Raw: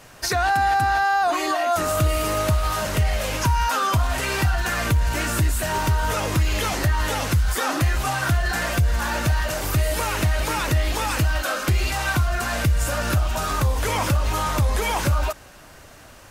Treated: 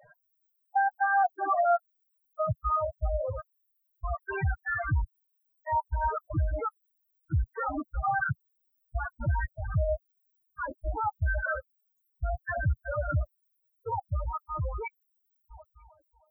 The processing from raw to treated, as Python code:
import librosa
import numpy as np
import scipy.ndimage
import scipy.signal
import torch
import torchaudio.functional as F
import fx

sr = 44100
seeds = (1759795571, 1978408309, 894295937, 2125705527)

y = fx.fade_out_tail(x, sr, length_s=4.76)
y = fx.echo_feedback(y, sr, ms=312, feedback_pct=42, wet_db=-12.0)
y = fx.rev_schroeder(y, sr, rt60_s=1.9, comb_ms=38, drr_db=12.5)
y = fx.rider(y, sr, range_db=4, speed_s=0.5)
y = fx.step_gate(y, sr, bpm=119, pattern='x.....x.xx.xx', floor_db=-60.0, edge_ms=4.5)
y = fx.air_absorb(y, sr, metres=260.0)
y = fx.dmg_noise_colour(y, sr, seeds[0], colour='blue', level_db=-60.0)
y = fx.low_shelf(y, sr, hz=290.0, db=-10.0)
y = fx.spec_topn(y, sr, count=4)
y = y * librosa.db_to_amplitude(2.5)